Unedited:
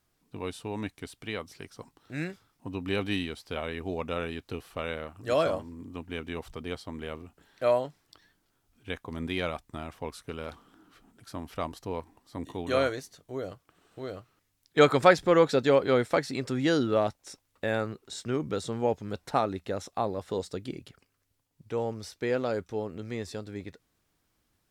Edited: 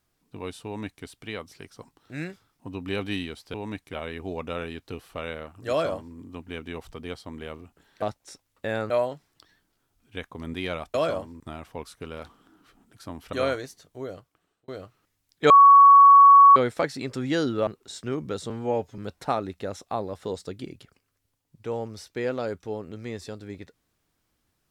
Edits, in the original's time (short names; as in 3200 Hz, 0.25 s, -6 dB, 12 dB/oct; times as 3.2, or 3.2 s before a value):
0.65–1.04 copy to 3.54
5.31–5.77 copy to 9.67
11.6–12.67 cut
13.37–14.02 fade out
14.84–15.9 bleep 1120 Hz -8.5 dBFS
17.01–17.89 move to 7.63
18.72–19.04 stretch 1.5×